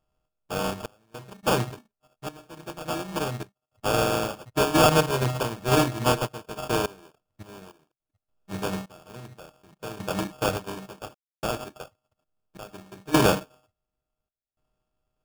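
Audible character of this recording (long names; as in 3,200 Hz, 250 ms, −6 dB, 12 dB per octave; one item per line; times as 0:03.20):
a buzz of ramps at a fixed pitch in blocks of 32 samples
sample-and-hold tremolo 3.5 Hz, depth 100%
aliases and images of a low sample rate 2,000 Hz, jitter 0%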